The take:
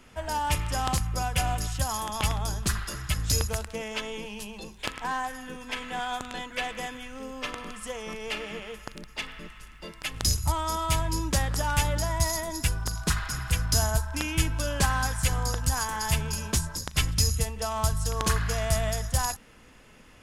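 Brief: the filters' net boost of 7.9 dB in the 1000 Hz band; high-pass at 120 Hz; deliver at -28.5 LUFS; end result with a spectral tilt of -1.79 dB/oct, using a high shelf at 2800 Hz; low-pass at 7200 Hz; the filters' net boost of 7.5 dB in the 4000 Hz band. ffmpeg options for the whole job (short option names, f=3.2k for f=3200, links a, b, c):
-af "highpass=120,lowpass=7.2k,equalizer=f=1k:t=o:g=8.5,highshelf=f=2.8k:g=6.5,equalizer=f=4k:t=o:g=4.5,volume=-3.5dB"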